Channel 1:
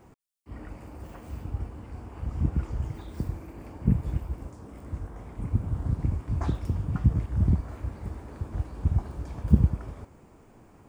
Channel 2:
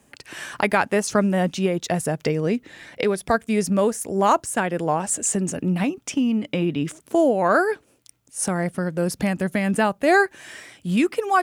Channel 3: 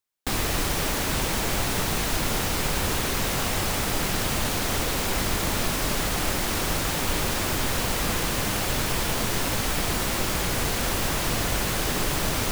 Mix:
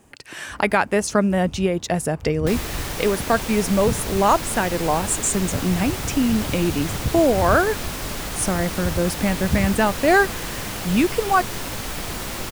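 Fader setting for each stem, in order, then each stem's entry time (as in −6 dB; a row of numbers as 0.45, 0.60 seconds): −3.5, +1.0, −3.5 decibels; 0.00, 0.00, 2.20 seconds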